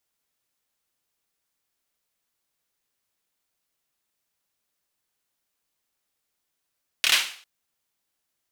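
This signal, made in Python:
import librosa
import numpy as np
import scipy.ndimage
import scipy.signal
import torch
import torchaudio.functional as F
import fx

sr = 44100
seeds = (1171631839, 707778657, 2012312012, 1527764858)

y = fx.drum_clap(sr, seeds[0], length_s=0.4, bursts=4, spacing_ms=27, hz=2700.0, decay_s=0.46)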